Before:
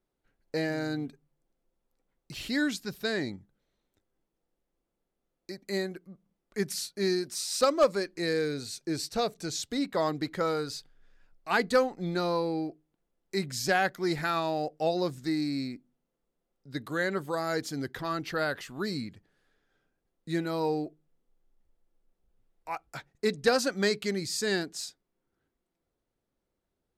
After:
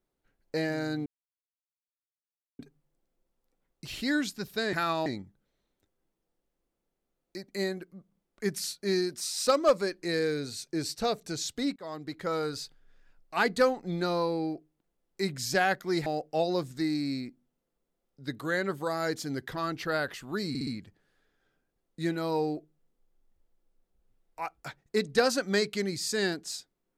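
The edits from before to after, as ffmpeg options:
-filter_complex "[0:a]asplit=9[s0][s1][s2][s3][s4][s5][s6][s7][s8];[s0]atrim=end=1.06,asetpts=PTS-STARTPTS,afade=t=out:st=1.056:d=0.004:c=hsin,apad=pad_dur=1.53[s9];[s1]atrim=start=1.06:end=3.202,asetpts=PTS-STARTPTS,afade=t=in:d=0.004:c=hsin[s10];[s2]atrim=start=14.198:end=14.532[s11];[s3]atrim=start=3.198:end=9.9,asetpts=PTS-STARTPTS,afade=t=out:st=6.698:d=0.004:c=hsin:silence=0.105925[s12];[s4]atrim=start=9.9:end=14.202,asetpts=PTS-STARTPTS,afade=t=in:d=0.74:silence=0.105925[s13];[s5]atrim=start=14.528:end=19.022[s14];[s6]atrim=start=18.958:end=19.022[s15];[s7]atrim=start=18.958:end=19.022[s16];[s8]atrim=start=18.958[s17];[s9][s10]concat=n=2:v=0:a=1[s18];[s18][s11]acrossfade=d=0.004:c1=hsin:c2=hsin[s19];[s12][s13]concat=n=2:v=0:a=1[s20];[s19][s20]acrossfade=d=0.004:c1=hsin:c2=hsin[s21];[s21][s14]acrossfade=d=0.004:c1=hsin:c2=hsin[s22];[s22][s15]acrossfade=d=0.004:c1=hsin:c2=hsin[s23];[s23][s16]acrossfade=d=0.004:c1=hsin:c2=hsin[s24];[s24][s17]acrossfade=d=0.004:c1=hsin:c2=hsin"

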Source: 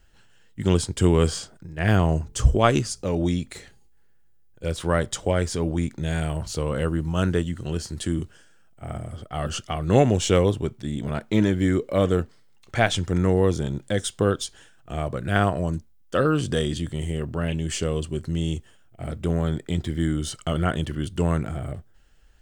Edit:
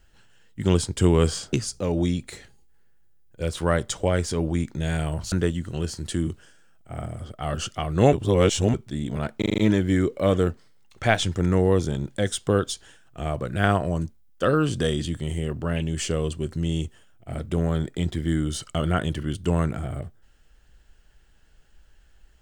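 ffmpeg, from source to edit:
-filter_complex "[0:a]asplit=10[s0][s1][s2][s3][s4][s5][s6][s7][s8][s9];[s0]atrim=end=1.532[s10];[s1]atrim=start=2.758:end=6.552[s11];[s2]atrim=start=7.238:end=10.052[s12];[s3]atrim=start=10.048:end=10.662,asetpts=PTS-STARTPTS,areverse[s13];[s4]atrim=start=10.658:end=11.342[s14];[s5]atrim=start=11.298:end=11.342[s15];[s6]atrim=start=11.298:end=11.342[s16];[s7]atrim=start=11.298:end=11.342[s17];[s8]atrim=start=11.298:end=11.342[s18];[s9]atrim=start=11.298[s19];[s10][s11]acrossfade=d=0.004:c1=hsin:c2=hsin[s20];[s20][s12]acrossfade=d=0.004:c1=hsin:c2=hsin[s21];[s21][s13]acrossfade=d=0.004:c1=hsin:c2=hsin[s22];[s22][s14]acrossfade=d=0.004:c1=hsin:c2=hsin[s23];[s23][s15]acrossfade=d=0.004:c1=hsin:c2=hsin[s24];[s24][s16]acrossfade=d=0.004:c1=hsin:c2=hsin[s25];[s25][s17]acrossfade=d=0.004:c1=hsin:c2=hsin[s26];[s26][s18]acrossfade=d=0.004:c1=hsin:c2=hsin[s27];[s27][s19]acrossfade=d=0.004:c1=hsin:c2=hsin"

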